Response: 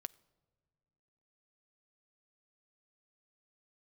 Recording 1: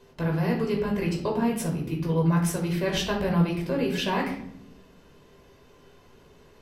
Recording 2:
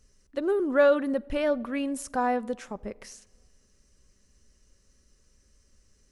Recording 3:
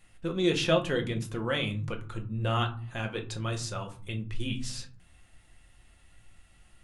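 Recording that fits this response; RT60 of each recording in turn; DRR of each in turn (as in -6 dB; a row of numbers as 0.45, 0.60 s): 2; 0.70 s, not exponential, 0.45 s; -0.5, 16.0, 3.0 dB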